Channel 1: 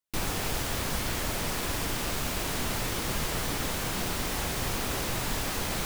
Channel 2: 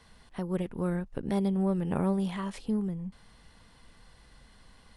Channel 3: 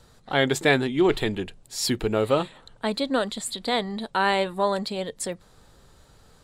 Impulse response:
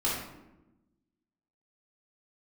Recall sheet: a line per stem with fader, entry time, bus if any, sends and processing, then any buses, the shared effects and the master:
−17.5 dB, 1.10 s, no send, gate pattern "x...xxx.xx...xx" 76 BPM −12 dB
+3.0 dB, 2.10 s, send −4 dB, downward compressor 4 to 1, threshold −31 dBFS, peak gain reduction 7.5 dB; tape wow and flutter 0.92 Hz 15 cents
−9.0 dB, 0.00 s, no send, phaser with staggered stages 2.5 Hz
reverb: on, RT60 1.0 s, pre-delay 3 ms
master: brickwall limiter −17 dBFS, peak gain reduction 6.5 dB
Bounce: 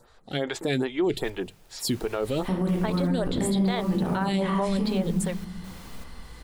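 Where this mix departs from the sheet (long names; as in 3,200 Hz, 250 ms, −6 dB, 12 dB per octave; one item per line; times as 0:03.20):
stem 2: missing tape wow and flutter 0.92 Hz 15 cents
stem 3 −9.0 dB → +2.0 dB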